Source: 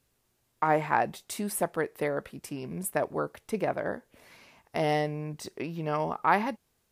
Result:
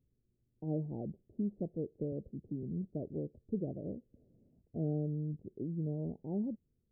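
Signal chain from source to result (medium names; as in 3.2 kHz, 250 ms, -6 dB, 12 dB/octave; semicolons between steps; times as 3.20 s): Gaussian low-pass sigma 24 samples; 2.12–2.63 s: three bands compressed up and down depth 40%; trim +1 dB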